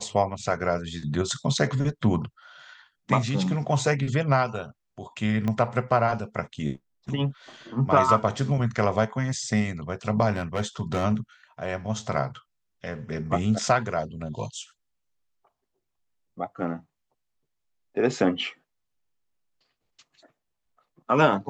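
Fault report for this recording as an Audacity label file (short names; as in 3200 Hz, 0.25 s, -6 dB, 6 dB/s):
5.480000	5.480000	pop -16 dBFS
10.360000	11.050000	clipped -20.5 dBFS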